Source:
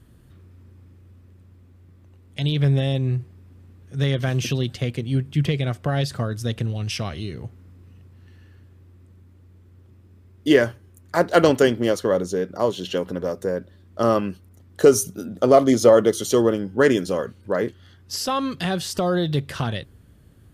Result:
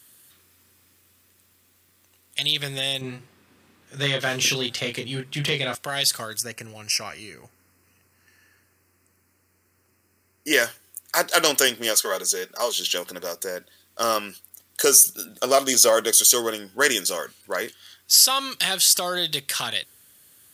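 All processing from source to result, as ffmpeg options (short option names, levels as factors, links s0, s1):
-filter_complex "[0:a]asettb=1/sr,asplit=3[s0][s1][s2];[s0]atrim=end=3.014[s3];[s1]atrim=start=3.01:end=5.75,asetpts=PTS-STARTPTS,afade=t=in:d=0.004:c=qsin,afade=t=out:st=2.736:d=0.004:c=qsin,lowpass=f=1400:p=1,acontrast=80,asplit=2[s4][s5];[s5]adelay=28,volume=0.562[s6];[s4][s6]amix=inputs=2:normalize=0,atrim=end_sample=120834[s7];[s2]atrim=start=5.746[s8];[s3][s7]acrossfade=d=0.004:c1=hsin:c2=qsin[s9];[s9][s8]acrossfade=d=0.004:c1=qsin:c2=hsin,asettb=1/sr,asplit=3[s10][s11][s12];[s10]atrim=end=6.404[s13];[s11]atrim=start=6.4:end=10.53,asetpts=PTS-STARTPTS,afade=t=in:d=0.004:c=qsin,afade=t=out:st=4.126:d=0.004:c=qsin,asuperstop=centerf=3500:order=4:qfactor=1.8,highshelf=f=5500:g=-8.5[s14];[s12]atrim=start=10.526[s15];[s13][s14]acrossfade=d=0.004:c1=hsin:c2=qsin[s16];[s16][s15]acrossfade=d=0.004:c1=qsin:c2=hsin,asettb=1/sr,asplit=3[s17][s18][s19];[s17]atrim=end=11.944[s20];[s18]atrim=start=11.94:end=12.72,asetpts=PTS-STARTPTS,afade=t=in:d=0.004:c=qsin,afade=t=out:st=0.776:d=0.004:c=qsin,highpass=f=370:p=1,aecho=1:1:4.8:0.59,atrim=end_sample=34398[s21];[s19]atrim=start=12.716[s22];[s20][s21]acrossfade=d=0.004:c1=hsin:c2=qsin[s23];[s23][s22]acrossfade=d=0.004:c1=qsin:c2=hsin,aderivative,alimiter=level_in=7.08:limit=0.891:release=50:level=0:latency=1,volume=0.891"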